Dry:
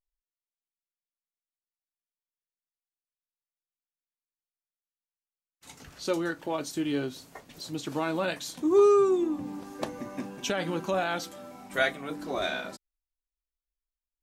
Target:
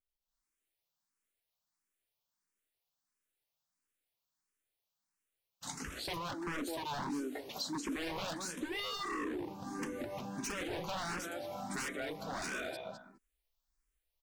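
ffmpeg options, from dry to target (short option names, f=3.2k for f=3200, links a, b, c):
-filter_complex "[0:a]asettb=1/sr,asplit=3[a][b][c];[a]atrim=end=5.984[d];[b]atrim=start=5.98:end=8.25,asetpts=PTS-STARTPTS,afade=t=in:d=0.004:c=qsin,afade=t=out:st=2.266:d=0.004:c=qsin,lowshelf=f=190:t=q:w=3:g=-8[e];[c]atrim=start=8.246[f];[d][e]acrossfade=d=0.004:c1=hsin:c2=qsin[g];[g][f]acrossfade=d=0.004:c1=qsin:c2=hsin,asplit=2[h][i];[i]adelay=207,lowpass=f=1.9k:p=1,volume=-9dB,asplit=2[j][k];[k]adelay=207,lowpass=f=1.9k:p=1,volume=0.16[l];[h][j][l]amix=inputs=3:normalize=0,dynaudnorm=f=190:g=3:m=12dB,aeval=exprs='0.126*(abs(mod(val(0)/0.126+3,4)-2)-1)':c=same,acompressor=threshold=-35dB:ratio=4,asplit=2[m][n];[n]afreqshift=1.5[o];[m][o]amix=inputs=2:normalize=1,volume=-1.5dB"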